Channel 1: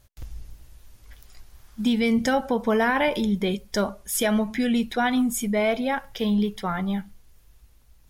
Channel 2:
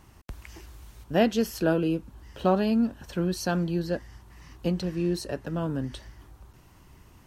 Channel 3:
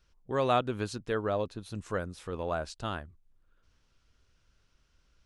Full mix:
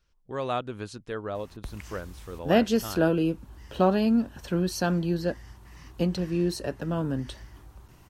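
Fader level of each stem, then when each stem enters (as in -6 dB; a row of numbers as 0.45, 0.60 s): off, +1.0 dB, -3.0 dB; off, 1.35 s, 0.00 s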